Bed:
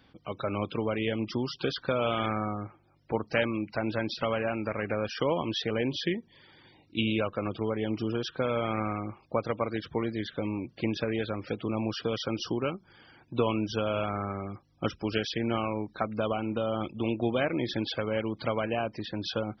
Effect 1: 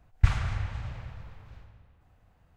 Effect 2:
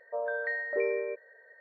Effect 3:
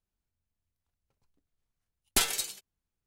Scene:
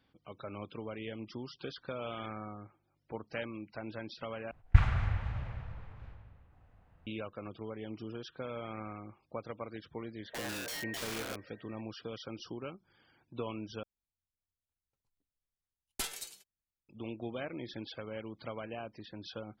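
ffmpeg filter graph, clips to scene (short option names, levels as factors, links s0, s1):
-filter_complex "[0:a]volume=0.251[s0];[1:a]bass=f=250:g=0,treble=f=4000:g=-14[s1];[2:a]aeval=exprs='(mod(31.6*val(0)+1,2)-1)/31.6':c=same[s2];[s0]asplit=3[s3][s4][s5];[s3]atrim=end=4.514[s6];[s1]atrim=end=2.56,asetpts=PTS-STARTPTS,volume=0.944[s7];[s4]atrim=start=7.066:end=13.834[s8];[3:a]atrim=end=3.06,asetpts=PTS-STARTPTS,volume=0.266[s9];[s5]atrim=start=16.886[s10];[s2]atrim=end=1.6,asetpts=PTS-STARTPTS,volume=0.501,afade=t=in:d=0.004:c=hsin,afade=t=out:st=1.596:d=0.004:c=hsin,adelay=10210[s11];[s6][s7]acrossfade=d=0.004:c1=hsin:c2=hsin[s12];[s12][s8]acrossfade=d=0.004:c1=hsin:c2=hsin[s13];[s13][s9]acrossfade=d=0.004:c1=hsin:c2=hsin[s14];[s14][s10]acrossfade=d=0.004:c1=hsin:c2=hsin[s15];[s15][s11]amix=inputs=2:normalize=0"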